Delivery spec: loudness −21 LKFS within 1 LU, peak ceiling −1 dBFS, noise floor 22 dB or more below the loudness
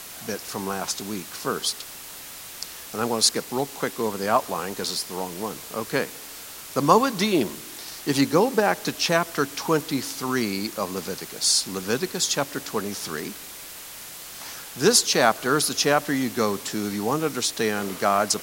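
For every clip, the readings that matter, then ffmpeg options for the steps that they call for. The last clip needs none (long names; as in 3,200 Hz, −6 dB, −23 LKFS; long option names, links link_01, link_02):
background noise floor −40 dBFS; target noise floor −46 dBFS; integrated loudness −24.0 LKFS; sample peak −2.0 dBFS; target loudness −21.0 LKFS
→ -af "afftdn=noise_reduction=6:noise_floor=-40"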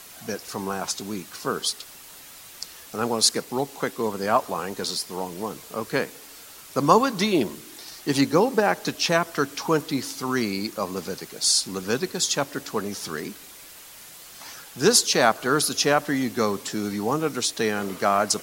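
background noise floor −45 dBFS; target noise floor −46 dBFS
→ -af "afftdn=noise_reduction=6:noise_floor=-45"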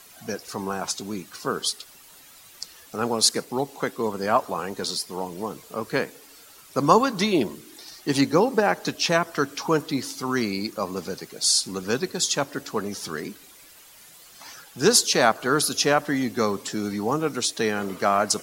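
background noise floor −50 dBFS; integrated loudness −24.0 LKFS; sample peak −2.5 dBFS; target loudness −21.0 LKFS
→ -af "volume=3dB,alimiter=limit=-1dB:level=0:latency=1"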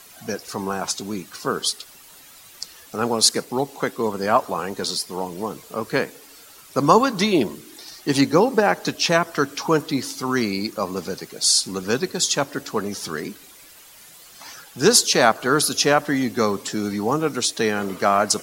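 integrated loudness −21.5 LKFS; sample peak −1.0 dBFS; background noise floor −47 dBFS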